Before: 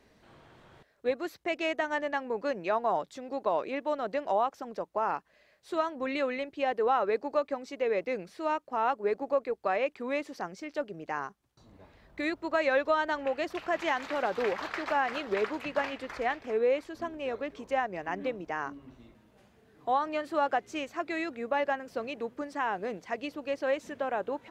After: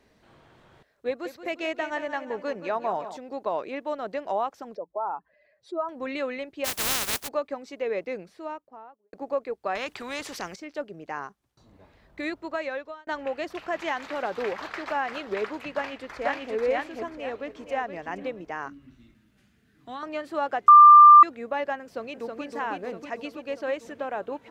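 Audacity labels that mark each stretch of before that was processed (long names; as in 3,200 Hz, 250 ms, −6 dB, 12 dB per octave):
1.080000	3.170000	repeating echo 175 ms, feedback 49%, level −11.5 dB
4.750000	5.890000	expanding power law on the bin magnitudes exponent 2
6.640000	7.270000	compressing power law on the bin magnitudes exponent 0.11
7.980000	9.130000	fade out and dull
9.750000	10.560000	every bin compressed towards the loudest bin 2 to 1
12.360000	13.070000	fade out
15.720000	16.530000	delay throw 490 ms, feedback 30%, level −0.5 dB
17.080000	17.720000	delay throw 470 ms, feedback 25%, level −9 dB
18.680000	20.030000	flat-topped bell 650 Hz −13 dB
20.680000	21.230000	beep over 1,190 Hz −7 dBFS
21.820000	22.450000	delay throw 320 ms, feedback 70%, level −3.5 dB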